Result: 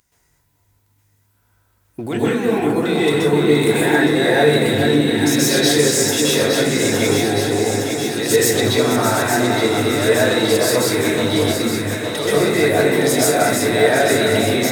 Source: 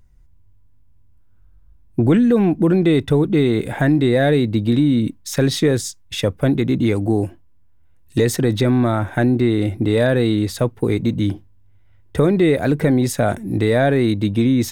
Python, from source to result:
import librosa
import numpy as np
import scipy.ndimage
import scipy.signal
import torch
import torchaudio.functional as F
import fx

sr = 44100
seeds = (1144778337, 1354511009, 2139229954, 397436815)

p1 = fx.reverse_delay(x, sr, ms=332, wet_db=-9.0)
p2 = fx.highpass(p1, sr, hz=710.0, slope=6)
p3 = fx.high_shelf(p2, sr, hz=3300.0, db=10.0)
p4 = fx.leveller(p3, sr, passes=1)
p5 = fx.over_compress(p4, sr, threshold_db=-30.0, ratio=-1.0)
p6 = p4 + F.gain(torch.from_numpy(p5), 1.0).numpy()
p7 = fx.echo_alternate(p6, sr, ms=432, hz=1200.0, feedback_pct=84, wet_db=-5)
p8 = fx.rev_plate(p7, sr, seeds[0], rt60_s=0.62, hf_ratio=0.5, predelay_ms=115, drr_db=-7.5)
y = F.gain(torch.from_numpy(p8), -8.5).numpy()